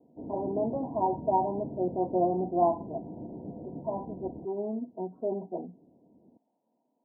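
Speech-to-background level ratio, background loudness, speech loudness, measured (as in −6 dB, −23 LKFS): 10.0 dB, −41.5 LKFS, −31.5 LKFS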